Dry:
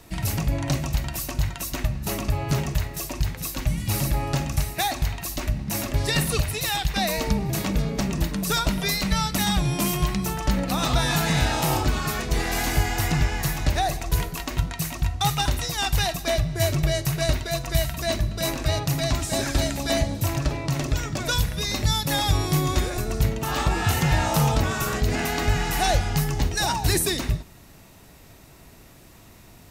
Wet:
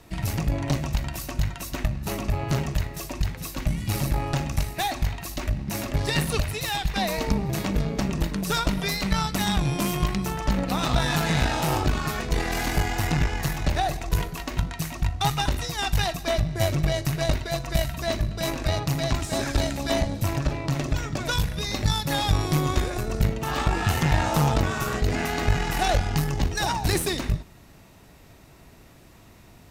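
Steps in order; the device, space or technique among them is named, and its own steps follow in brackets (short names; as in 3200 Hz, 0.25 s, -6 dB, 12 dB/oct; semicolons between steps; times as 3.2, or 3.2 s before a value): tube preamp driven hard (tube stage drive 14 dB, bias 0.75; high shelf 5600 Hz -6.5 dB); gain +3.5 dB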